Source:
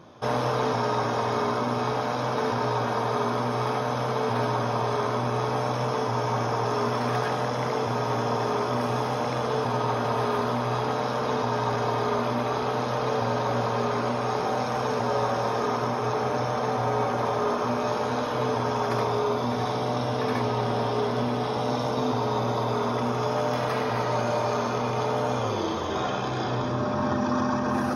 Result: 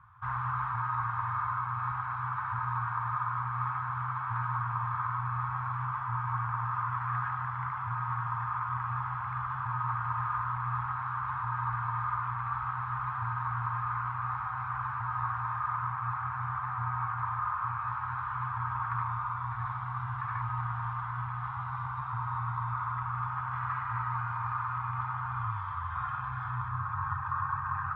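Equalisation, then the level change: inverse Chebyshev band-stop 240–560 Hz, stop band 60 dB; four-pole ladder low-pass 1.4 kHz, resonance 35%; +8.5 dB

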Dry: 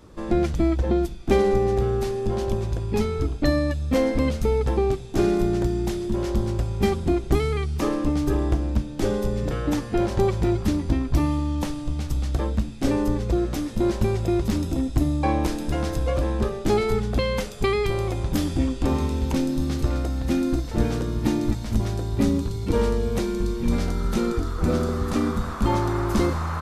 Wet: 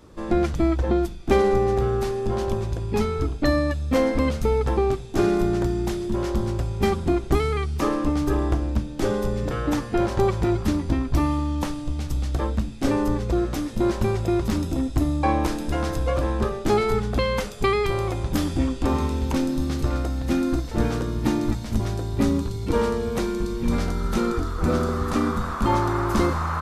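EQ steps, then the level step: hum notches 50/100/150/200 Hz; dynamic bell 1.2 kHz, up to +5 dB, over -39 dBFS, Q 1.2; 0.0 dB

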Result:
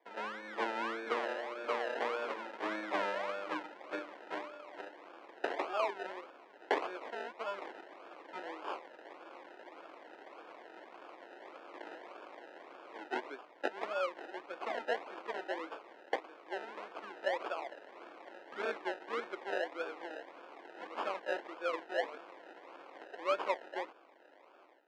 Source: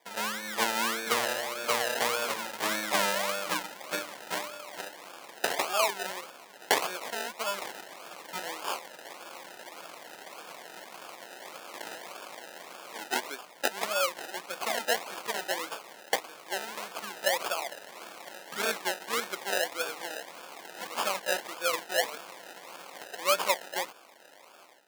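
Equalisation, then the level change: ladder high-pass 260 Hz, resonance 45%; low-pass 2.2 kHz 12 dB/octave; +2.0 dB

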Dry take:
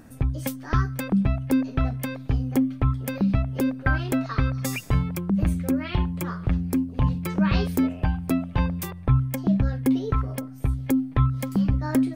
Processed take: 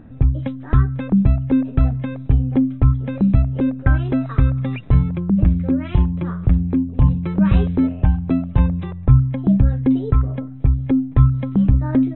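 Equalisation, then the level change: brick-wall FIR low-pass 4 kHz; tilt shelf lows +4 dB, about 1.2 kHz; bass shelf 190 Hz +7 dB; -1.0 dB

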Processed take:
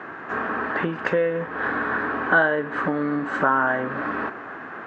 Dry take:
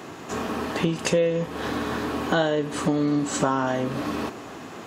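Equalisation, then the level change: resonant low-pass 1.6 kHz, resonance Q 4.2; bass shelf 170 Hz -10 dB; 0.0 dB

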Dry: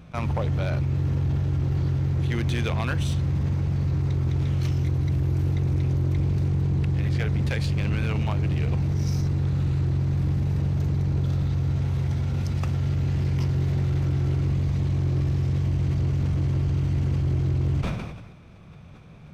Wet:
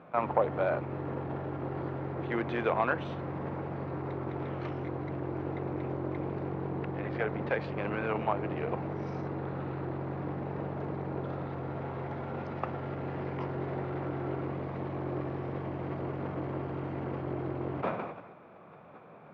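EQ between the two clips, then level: high-pass 480 Hz 12 dB/octave; low-pass 1.2 kHz 12 dB/octave; distance through air 97 m; +7.5 dB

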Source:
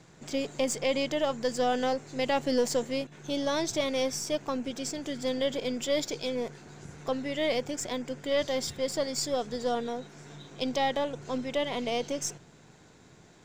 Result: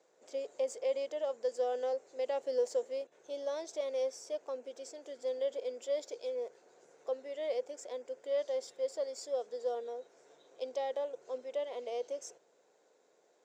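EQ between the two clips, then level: ladder high-pass 450 Hz, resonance 60%; tilt EQ -2.5 dB/octave; peaking EQ 7 kHz +9 dB 1.4 oct; -5.5 dB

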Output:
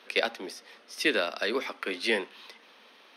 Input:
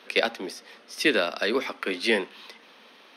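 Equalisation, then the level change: bass shelf 150 Hz -11 dB; -3.0 dB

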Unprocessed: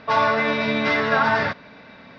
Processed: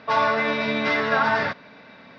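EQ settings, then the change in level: high-pass 130 Hz 6 dB/octave; -1.5 dB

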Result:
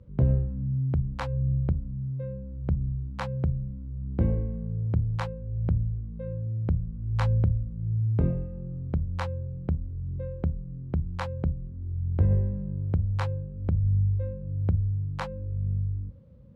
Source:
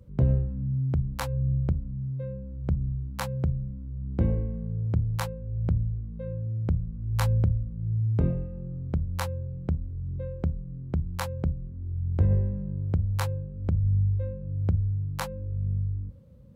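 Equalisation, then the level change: Bessel low-pass 3.1 kHz, order 2; 0.0 dB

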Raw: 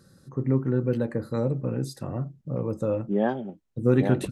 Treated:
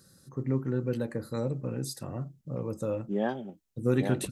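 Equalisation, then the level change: treble shelf 2.8 kHz +8 dB; treble shelf 5.6 kHz +4.5 dB; -5.5 dB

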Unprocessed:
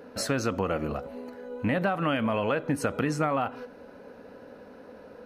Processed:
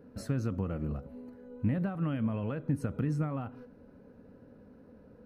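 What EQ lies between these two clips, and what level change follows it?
FFT filter 140 Hz 0 dB, 710 Hz -18 dB, 1.3 kHz -17 dB, 3.2 kHz -21 dB, 7 kHz -20 dB, 10 kHz -17 dB; +2.5 dB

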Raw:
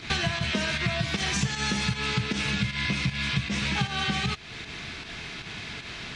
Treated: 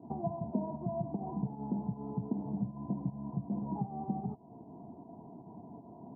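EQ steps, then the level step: high-pass 140 Hz 12 dB/octave; rippled Chebyshev low-pass 1 kHz, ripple 9 dB; 0.0 dB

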